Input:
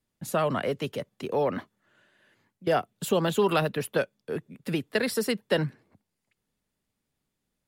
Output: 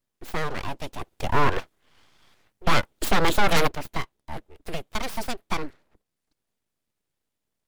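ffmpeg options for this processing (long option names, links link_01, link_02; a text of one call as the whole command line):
ffmpeg -i in.wav -filter_complex "[0:a]aeval=exprs='abs(val(0))':channel_layout=same,asplit=3[link_01][link_02][link_03];[link_01]afade=type=out:start_time=1:duration=0.02[link_04];[link_02]aeval=exprs='0.266*(cos(1*acos(clip(val(0)/0.266,-1,1)))-cos(1*PI/2))+0.0596*(cos(5*acos(clip(val(0)/0.266,-1,1)))-cos(5*PI/2))+0.075*(cos(6*acos(clip(val(0)/0.266,-1,1)))-cos(6*PI/2))':channel_layout=same,afade=type=in:start_time=1:duration=0.02,afade=type=out:start_time=3.67:duration=0.02[link_05];[link_03]afade=type=in:start_time=3.67:duration=0.02[link_06];[link_04][link_05][link_06]amix=inputs=3:normalize=0" out.wav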